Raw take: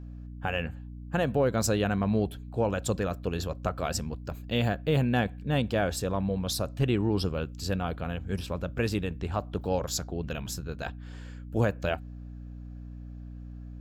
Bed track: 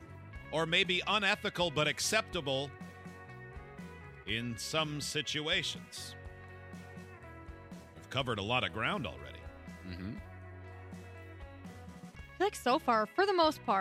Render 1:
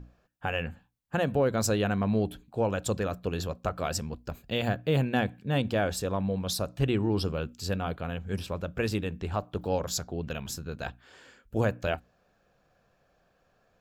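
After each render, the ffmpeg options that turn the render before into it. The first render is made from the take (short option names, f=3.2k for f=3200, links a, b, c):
-af "bandreject=f=60:t=h:w=6,bandreject=f=120:t=h:w=6,bandreject=f=180:t=h:w=6,bandreject=f=240:t=h:w=6,bandreject=f=300:t=h:w=6"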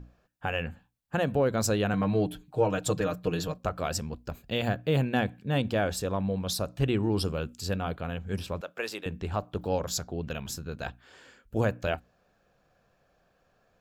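-filter_complex "[0:a]asettb=1/sr,asplit=3[a][b][c];[a]atrim=end=1.934[d];[b]atrim=start=1.93:end=3.58,asetpts=PTS-STARTPTS,afade=t=in:d=0.004:c=qsin,afade=t=out:st=1.646:d=0.004:c=qsin,aecho=1:1:6.5:0.8,atrim=end_sample=72765[e];[c]atrim=start=3.576[f];[d][e]acrossfade=d=0.004:c1=hsin:c2=qsin[g];[g][f]acrossfade=d=0.004:c1=qsin:c2=hsin,asettb=1/sr,asplit=3[h][i][j];[h]atrim=end=7.034[k];[i]atrim=start=7.03:end=7.61,asetpts=PTS-STARTPTS,afade=t=in:d=0.004:c=qsin,afade=t=out:st=0.576:d=0.004:c=qsin,equalizer=f=9.5k:t=o:w=0.77:g=10[l];[j]atrim=start=7.606[m];[k][l]acrossfade=d=0.004:c1=hsin:c2=qsin[n];[n][m]acrossfade=d=0.004:c1=qsin:c2=hsin,asettb=1/sr,asplit=3[o][p][q];[o]atrim=end=8.614[r];[p]atrim=start=8.61:end=9.06,asetpts=PTS-STARTPTS,afade=t=in:d=0.004:c=qsin,afade=t=out:st=0.446:d=0.004:c=qsin,highpass=540[s];[q]atrim=start=9.056[t];[r][s]acrossfade=d=0.004:c1=hsin:c2=qsin[u];[u][t]acrossfade=d=0.004:c1=qsin:c2=hsin"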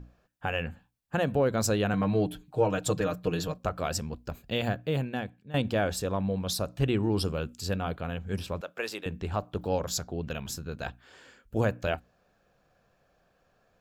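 -filter_complex "[0:a]asplit=2[a][b];[a]atrim=end=5.54,asetpts=PTS-STARTPTS,afade=t=out:st=4.56:d=0.98:silence=0.149624[c];[b]atrim=start=5.54,asetpts=PTS-STARTPTS,afade=t=in:d=0.004:c=hsin:silence=0.149624[d];[c][d]concat=n=2:v=0:a=1"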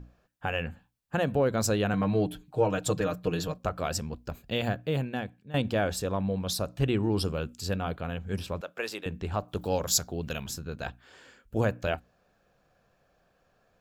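-filter_complex "[0:a]asettb=1/sr,asplit=3[a][b][c];[a]atrim=end=9.484[d];[b]atrim=start=9.48:end=10.45,asetpts=PTS-STARTPTS,afade=t=in:d=0.004:c=qsin,afade=t=out:st=0.966:d=0.004:c=qsin,highshelf=f=4.2k:g=10.5[e];[c]atrim=start=10.446[f];[d][e]acrossfade=d=0.004:c1=hsin:c2=qsin[g];[g][f]acrossfade=d=0.004:c1=qsin:c2=hsin"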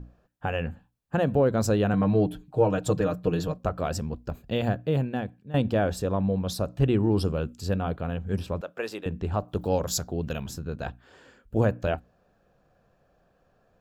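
-af "tiltshelf=f=1.3k:g=4.5,bandreject=f=2.2k:w=23"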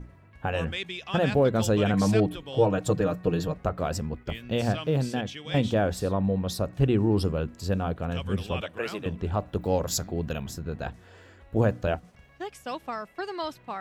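-filter_complex "[1:a]volume=-5dB[a];[0:a][a]amix=inputs=2:normalize=0"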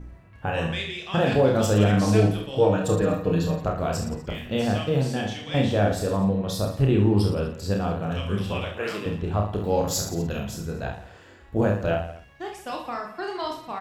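-filter_complex "[0:a]asplit=2[a][b];[b]adelay=48,volume=-8dB[c];[a][c]amix=inputs=2:normalize=0,asplit=2[d][e];[e]aecho=0:1:30|67.5|114.4|173|246.2:0.631|0.398|0.251|0.158|0.1[f];[d][f]amix=inputs=2:normalize=0"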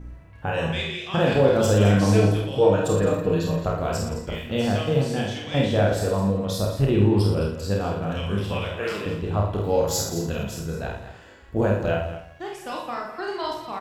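-af "aecho=1:1:50|210:0.562|0.251"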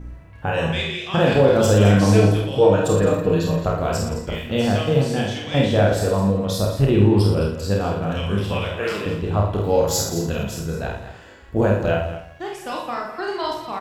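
-af "volume=3.5dB,alimiter=limit=-3dB:level=0:latency=1"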